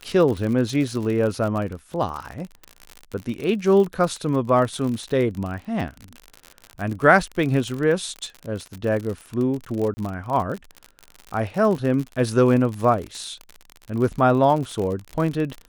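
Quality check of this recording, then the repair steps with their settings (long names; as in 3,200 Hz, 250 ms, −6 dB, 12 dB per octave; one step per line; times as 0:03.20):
surface crackle 57 per second −27 dBFS
0:09.94–0:09.97: drop-out 30 ms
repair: click removal
repair the gap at 0:09.94, 30 ms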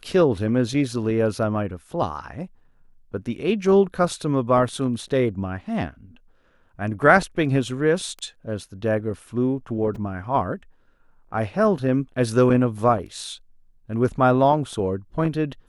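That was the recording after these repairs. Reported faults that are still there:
none of them is left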